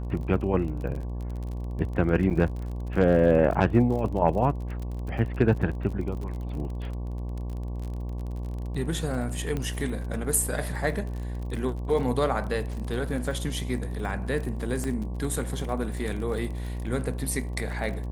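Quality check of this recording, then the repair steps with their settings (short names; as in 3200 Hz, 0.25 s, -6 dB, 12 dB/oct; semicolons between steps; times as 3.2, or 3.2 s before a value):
buzz 60 Hz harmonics 19 -32 dBFS
crackle 37/s -34 dBFS
2.3–2.31 gap 7.6 ms
9.57 pop -18 dBFS
14.84 pop -19 dBFS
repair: de-click; de-hum 60 Hz, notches 19; interpolate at 2.3, 7.6 ms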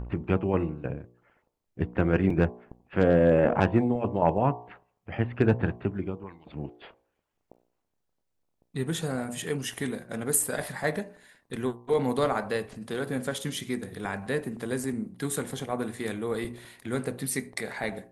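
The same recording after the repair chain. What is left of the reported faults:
14.84 pop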